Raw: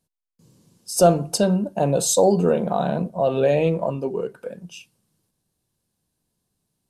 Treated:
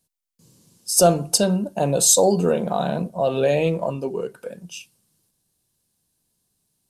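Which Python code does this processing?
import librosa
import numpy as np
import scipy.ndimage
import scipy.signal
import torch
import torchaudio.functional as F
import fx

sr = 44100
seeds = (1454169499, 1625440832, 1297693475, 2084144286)

y = fx.high_shelf(x, sr, hz=3100.0, db=9.0)
y = y * 10.0 ** (-1.0 / 20.0)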